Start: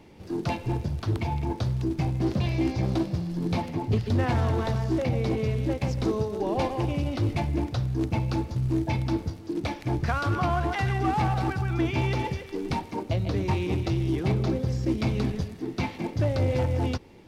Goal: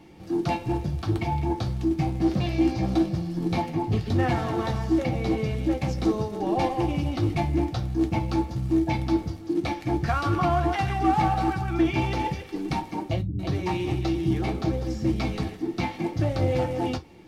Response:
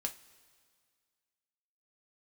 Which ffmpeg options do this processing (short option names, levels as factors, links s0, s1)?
-filter_complex "[0:a]asettb=1/sr,asplit=3[s0][s1][s2];[s0]atrim=end=13.214[s3];[s1]atrim=start=13.21:end=15.56,asetpts=PTS-STARTPTS,afade=t=in:d=0.004:c=qsin,afade=t=out:st=2.346:d=0.004:c=qsin,acrossover=split=250[s4][s5];[s5]adelay=180[s6];[s4][s6]amix=inputs=2:normalize=0,atrim=end_sample=103635[s7];[s2]atrim=start=15.556[s8];[s3][s7]acrossfade=d=0.004:c1=hsin:c2=qsin[s9];[s9][s8]acrossfade=d=0.004:c1=qsin:c2=hsin[s10];[1:a]atrim=start_sample=2205,atrim=end_sample=4410,asetrate=61740,aresample=44100[s11];[s10][s11]afir=irnorm=-1:irlink=0,volume=1.58"